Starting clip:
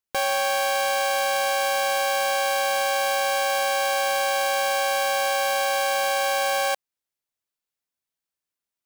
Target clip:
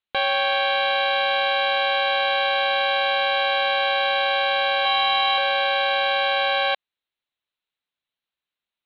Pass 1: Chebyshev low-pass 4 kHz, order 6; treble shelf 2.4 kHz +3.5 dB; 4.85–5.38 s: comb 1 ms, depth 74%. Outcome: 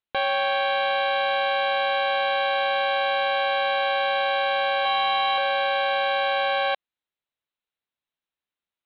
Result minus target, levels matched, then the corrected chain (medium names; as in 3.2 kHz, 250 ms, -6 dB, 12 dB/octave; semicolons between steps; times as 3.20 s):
4 kHz band -2.5 dB
Chebyshev low-pass 4 kHz, order 6; treble shelf 2.4 kHz +11.5 dB; 4.85–5.38 s: comb 1 ms, depth 74%